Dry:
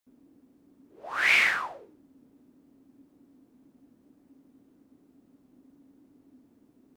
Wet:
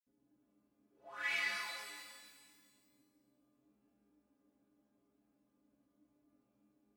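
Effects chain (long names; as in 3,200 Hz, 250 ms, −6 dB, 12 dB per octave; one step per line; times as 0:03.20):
stiff-string resonator 62 Hz, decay 0.5 s, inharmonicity 0.03
reverb with rising layers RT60 1.7 s, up +12 semitones, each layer −8 dB, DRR 2 dB
level −6.5 dB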